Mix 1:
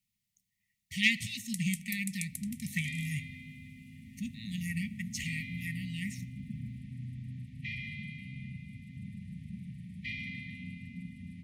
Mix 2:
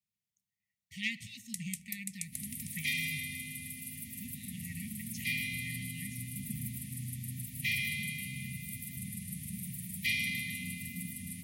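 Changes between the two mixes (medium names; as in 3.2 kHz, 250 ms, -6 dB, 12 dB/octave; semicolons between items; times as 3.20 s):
speech -9.0 dB; second sound: remove tape spacing loss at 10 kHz 33 dB; master: add high-pass 61 Hz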